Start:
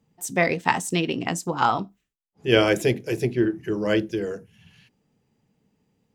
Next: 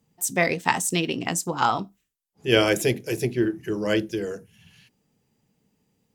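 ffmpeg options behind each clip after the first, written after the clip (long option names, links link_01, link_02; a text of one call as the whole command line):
ffmpeg -i in.wav -af "aemphasis=mode=production:type=cd,volume=-1dB" out.wav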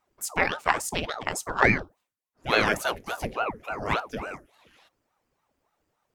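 ffmpeg -i in.wav -af "equalizer=frequency=1300:width=1.3:gain=12,aeval=exprs='val(0)*sin(2*PI*590*n/s+590*0.85/3.5*sin(2*PI*3.5*n/s))':channel_layout=same,volume=-4dB" out.wav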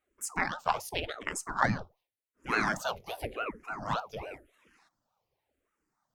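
ffmpeg -i in.wav -filter_complex "[0:a]asplit=2[link_01][link_02];[link_02]afreqshift=-0.9[link_03];[link_01][link_03]amix=inputs=2:normalize=1,volume=-3dB" out.wav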